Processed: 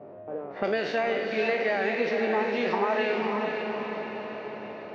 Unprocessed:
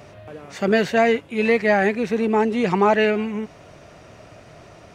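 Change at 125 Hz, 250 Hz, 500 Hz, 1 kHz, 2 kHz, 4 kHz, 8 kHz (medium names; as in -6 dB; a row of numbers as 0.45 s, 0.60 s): -13.0 dB, -11.0 dB, -6.5 dB, -6.5 dB, -5.5 dB, -4.5 dB, no reading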